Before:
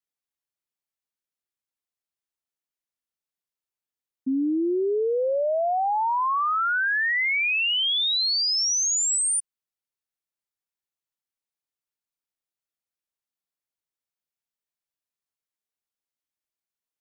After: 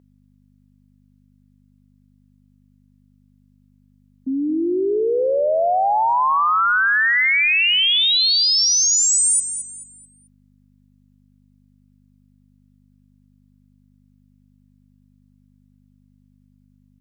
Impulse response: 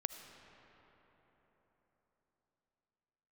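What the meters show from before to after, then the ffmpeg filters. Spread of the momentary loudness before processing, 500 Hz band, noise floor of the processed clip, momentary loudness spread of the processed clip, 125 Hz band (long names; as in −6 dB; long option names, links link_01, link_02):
4 LU, +5.0 dB, −57 dBFS, 10 LU, can't be measured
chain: -filter_complex "[0:a]asplit=2[link_01][link_02];[link_02]aecho=0:1:218|436|654|872:0.316|0.104|0.0344|0.0114[link_03];[link_01][link_03]amix=inputs=2:normalize=0,aeval=exprs='val(0)+0.00355*(sin(2*PI*50*n/s)+sin(2*PI*2*50*n/s)/2+sin(2*PI*3*50*n/s)/3+sin(2*PI*4*50*n/s)/4+sin(2*PI*5*50*n/s)/5)':channel_layout=same,highpass=frequency=390:poles=1,volume=6.5dB"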